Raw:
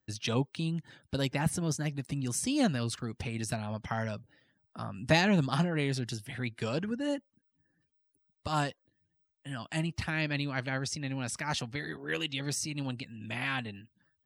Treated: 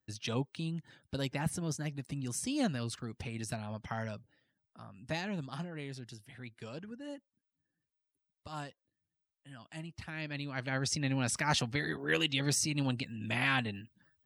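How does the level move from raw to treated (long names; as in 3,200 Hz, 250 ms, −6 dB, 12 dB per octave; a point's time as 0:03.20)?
0:04.10 −4.5 dB
0:04.83 −12 dB
0:09.90 −12 dB
0:10.52 −5.5 dB
0:10.94 +3 dB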